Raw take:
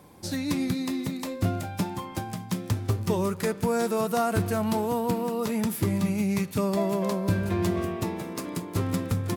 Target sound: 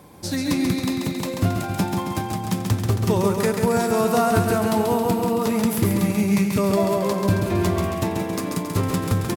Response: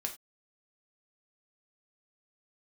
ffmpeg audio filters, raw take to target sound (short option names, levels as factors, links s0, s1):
-af "aecho=1:1:136|272|408|544|680|816|952|1088:0.562|0.321|0.183|0.104|0.0594|0.0338|0.0193|0.011,volume=1.78"